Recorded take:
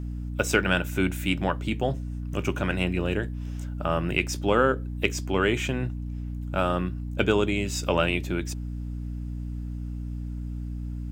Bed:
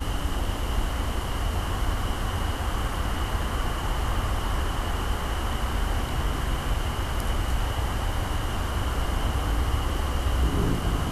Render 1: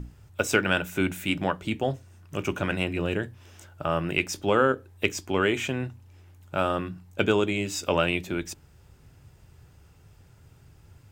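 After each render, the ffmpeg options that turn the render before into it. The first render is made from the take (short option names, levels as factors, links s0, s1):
-af "bandreject=f=60:t=h:w=6,bandreject=f=120:t=h:w=6,bandreject=f=180:t=h:w=6,bandreject=f=240:t=h:w=6,bandreject=f=300:t=h:w=6"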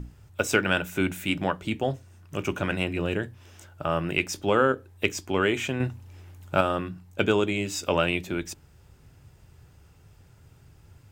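-filter_complex "[0:a]asettb=1/sr,asplit=3[s0][s1][s2];[s0]atrim=end=5.804[s3];[s1]atrim=start=5.8:end=6.61,asetpts=PTS-STARTPTS,afade=t=in:d=0.004:c=qsin,afade=t=out:st=0.806:d=0.004:c=qsin,acontrast=36[s4];[s2]atrim=start=6.606[s5];[s3][s4]acrossfade=d=0.004:c1=hsin:c2=qsin[s6];[s6][s5]acrossfade=d=0.004:c1=qsin:c2=hsin"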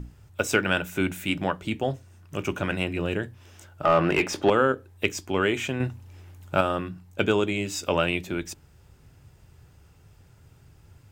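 -filter_complex "[0:a]asettb=1/sr,asplit=3[s0][s1][s2];[s0]atrim=end=3.834[s3];[s1]atrim=start=3.83:end=4.5,asetpts=PTS-STARTPTS,afade=t=in:d=0.004:c=qsin,afade=t=out:st=0.666:d=0.004:c=qsin,asplit=2[s4][s5];[s5]highpass=f=720:p=1,volume=14.1,asoftclip=type=tanh:threshold=0.473[s6];[s4][s6]amix=inputs=2:normalize=0,lowpass=f=1100:p=1,volume=0.501[s7];[s2]atrim=start=4.496[s8];[s3][s7]acrossfade=d=0.004:c1=hsin:c2=qsin[s9];[s9][s8]acrossfade=d=0.004:c1=qsin:c2=hsin"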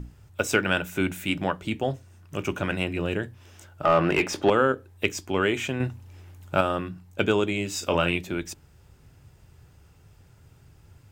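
-filter_complex "[0:a]asettb=1/sr,asplit=3[s0][s1][s2];[s0]atrim=end=7.704[s3];[s1]atrim=start=7.7:end=8.18,asetpts=PTS-STARTPTS,afade=t=in:d=0.004:c=qsin,afade=t=out:st=0.476:d=0.004:c=qsin,asplit=2[s4][s5];[s5]adelay=35,volume=0.355[s6];[s4][s6]amix=inputs=2:normalize=0,atrim=end_sample=21168[s7];[s2]atrim=start=8.176[s8];[s3][s7]acrossfade=d=0.004:c1=hsin:c2=qsin[s9];[s9][s8]acrossfade=d=0.004:c1=qsin:c2=hsin"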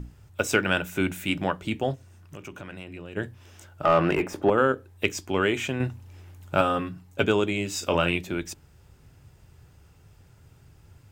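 -filter_complex "[0:a]asplit=3[s0][s1][s2];[s0]afade=t=out:st=1.94:d=0.02[s3];[s1]acompressor=threshold=0.01:ratio=3:attack=3.2:release=140:knee=1:detection=peak,afade=t=in:st=1.94:d=0.02,afade=t=out:st=3.16:d=0.02[s4];[s2]afade=t=in:st=3.16:d=0.02[s5];[s3][s4][s5]amix=inputs=3:normalize=0,asettb=1/sr,asplit=3[s6][s7][s8];[s6]atrim=end=4.154[s9];[s7]atrim=start=4.15:end=4.58,asetpts=PTS-STARTPTS,afade=t=in:d=0.004:c=qsin,afade=t=out:st=0.426:d=0.004:c=qsin,equalizer=f=4300:w=0.56:g=-13[s10];[s8]atrim=start=4.576[s11];[s9][s10]acrossfade=d=0.004:c1=hsin:c2=qsin[s12];[s12][s11]acrossfade=d=0.004:c1=qsin:c2=hsin,asettb=1/sr,asplit=3[s13][s14][s15];[s13]atrim=end=6.604[s16];[s14]atrim=start=6.6:end=7.24,asetpts=PTS-STARTPTS,afade=t=in:d=0.004:c=qsin,afade=t=out:st=0.636:d=0.004:c=qsin,aecho=1:1:7.3:0.63,atrim=end_sample=28224[s17];[s15]atrim=start=7.236[s18];[s16][s17]acrossfade=d=0.004:c1=hsin:c2=qsin[s19];[s19][s18]acrossfade=d=0.004:c1=qsin:c2=hsin"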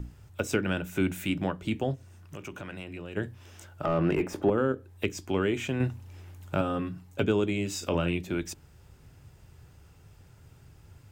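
-filter_complex "[0:a]acrossover=split=420[s0][s1];[s1]acompressor=threshold=0.0178:ratio=2.5[s2];[s0][s2]amix=inputs=2:normalize=0"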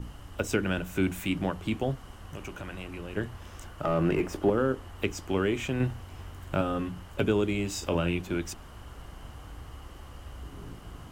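-filter_complex "[1:a]volume=0.112[s0];[0:a][s0]amix=inputs=2:normalize=0"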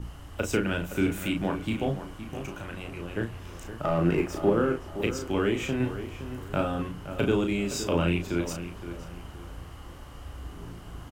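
-filter_complex "[0:a]asplit=2[s0][s1];[s1]adelay=35,volume=0.562[s2];[s0][s2]amix=inputs=2:normalize=0,asplit=2[s3][s4];[s4]adelay=517,lowpass=f=2700:p=1,volume=0.282,asplit=2[s5][s6];[s6]adelay=517,lowpass=f=2700:p=1,volume=0.35,asplit=2[s7][s8];[s8]adelay=517,lowpass=f=2700:p=1,volume=0.35,asplit=2[s9][s10];[s10]adelay=517,lowpass=f=2700:p=1,volume=0.35[s11];[s3][s5][s7][s9][s11]amix=inputs=5:normalize=0"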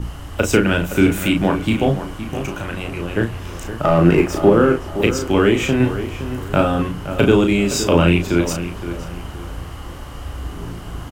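-af "volume=3.76,alimiter=limit=0.891:level=0:latency=1"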